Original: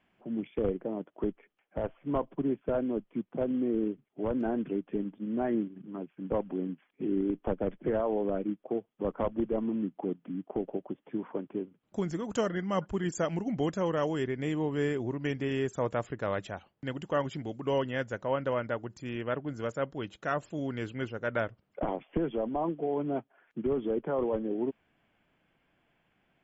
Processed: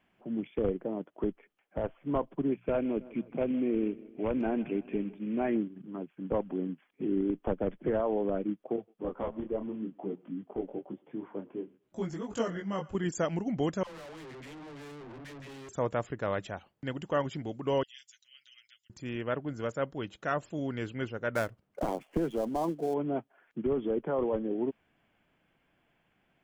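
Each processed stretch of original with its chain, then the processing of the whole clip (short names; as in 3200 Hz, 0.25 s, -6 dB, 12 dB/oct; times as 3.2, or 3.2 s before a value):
2.52–5.57 bell 2400 Hz +12.5 dB 0.41 oct + notches 60/120/180 Hz + feedback echo 0.159 s, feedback 55%, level -20 dB
8.76–12.95 thinning echo 0.117 s, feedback 39%, high-pass 620 Hz, level -20.5 dB + detuned doubles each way 20 cents
13.83–15.69 dispersion lows, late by 98 ms, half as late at 440 Hz + tube stage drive 45 dB, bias 0.55
17.83–18.9 inverse Chebyshev high-pass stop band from 1000 Hz, stop band 60 dB + comb 7.3 ms, depth 67%
21.35–22.94 switching dead time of 0.063 ms + mismatched tape noise reduction decoder only
whole clip: dry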